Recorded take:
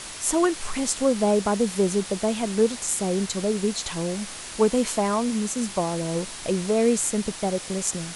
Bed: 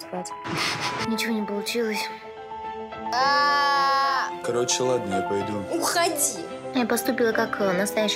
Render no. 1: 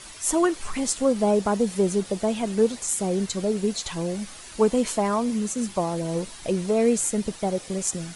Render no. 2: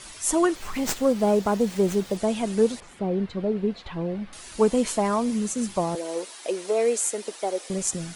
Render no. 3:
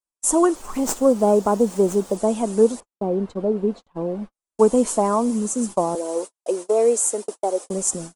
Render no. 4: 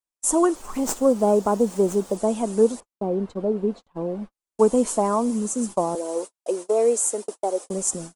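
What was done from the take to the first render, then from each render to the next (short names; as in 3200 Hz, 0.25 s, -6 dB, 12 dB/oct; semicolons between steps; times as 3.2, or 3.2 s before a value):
denoiser 9 dB, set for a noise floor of -38 dBFS
0.55–2.17 running maximum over 3 samples; 2.8–4.33 air absorption 400 m; 5.95–7.7 HPF 340 Hz 24 dB/oct
gate -33 dBFS, range -55 dB; graphic EQ 125/250/500/1000/2000/4000/8000 Hz -8/+5/+4/+6/-8/-6/+7 dB
gain -2 dB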